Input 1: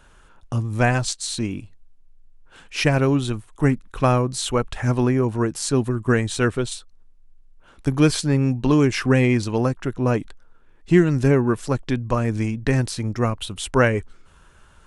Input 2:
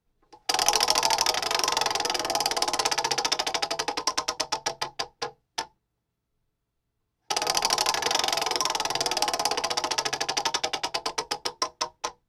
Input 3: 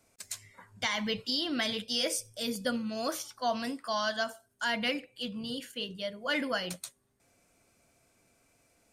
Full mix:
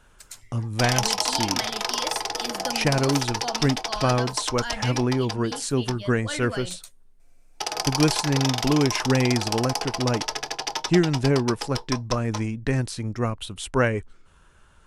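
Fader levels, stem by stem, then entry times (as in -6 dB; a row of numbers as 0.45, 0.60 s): -4.0, -2.5, -2.5 dB; 0.00, 0.30, 0.00 s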